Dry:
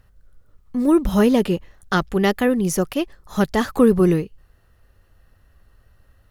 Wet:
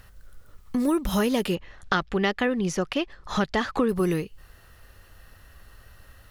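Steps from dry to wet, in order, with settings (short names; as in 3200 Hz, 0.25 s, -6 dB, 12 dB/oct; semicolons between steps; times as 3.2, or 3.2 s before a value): tilt shelf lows -4.5 dB, about 930 Hz; compressor 3:1, threshold -33 dBFS, peak gain reduction 15.5 dB; 1.55–3.89 LPF 4100 Hz 12 dB/oct; gain +8 dB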